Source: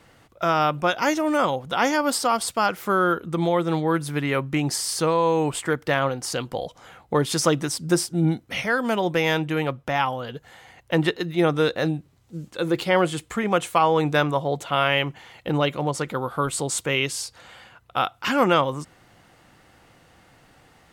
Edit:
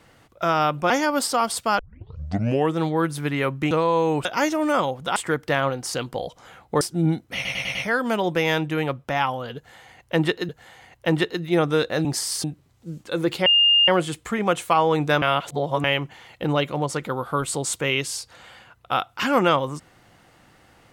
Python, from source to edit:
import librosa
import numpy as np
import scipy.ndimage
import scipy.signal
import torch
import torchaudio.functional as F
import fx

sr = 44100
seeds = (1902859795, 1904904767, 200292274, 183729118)

y = fx.edit(x, sr, fx.move(start_s=0.9, length_s=0.91, to_s=5.55),
    fx.tape_start(start_s=2.7, length_s=0.97),
    fx.move(start_s=4.62, length_s=0.39, to_s=11.91),
    fx.cut(start_s=7.2, length_s=0.8),
    fx.stutter(start_s=8.54, slice_s=0.1, count=5),
    fx.repeat(start_s=10.35, length_s=0.93, count=2),
    fx.insert_tone(at_s=12.93, length_s=0.42, hz=2820.0, db=-13.0),
    fx.reverse_span(start_s=14.27, length_s=0.62), tone=tone)